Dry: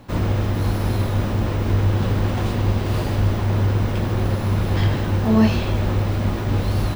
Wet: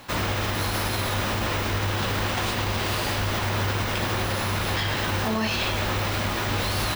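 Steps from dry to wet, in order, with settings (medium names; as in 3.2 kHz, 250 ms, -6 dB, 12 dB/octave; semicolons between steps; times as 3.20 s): tilt shelf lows -9 dB, about 640 Hz; peak limiter -17 dBFS, peak gain reduction 9.5 dB; trim +1 dB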